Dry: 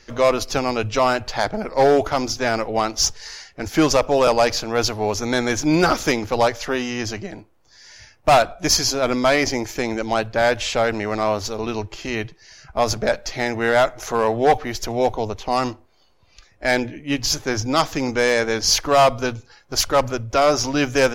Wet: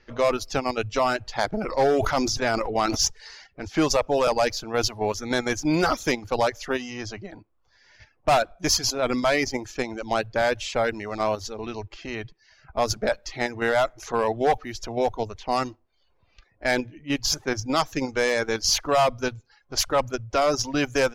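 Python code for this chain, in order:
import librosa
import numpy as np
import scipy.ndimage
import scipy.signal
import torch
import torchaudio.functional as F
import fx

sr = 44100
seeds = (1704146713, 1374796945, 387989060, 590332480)

p1 = fx.level_steps(x, sr, step_db=22)
p2 = x + F.gain(torch.from_numpy(p1), -1.0).numpy()
p3 = fx.dereverb_blind(p2, sr, rt60_s=0.52)
p4 = fx.env_lowpass(p3, sr, base_hz=3000.0, full_db=-15.5)
p5 = fx.sustainer(p4, sr, db_per_s=30.0, at=(1.52, 3.05), fade=0.02)
y = F.gain(torch.from_numpy(p5), -7.5).numpy()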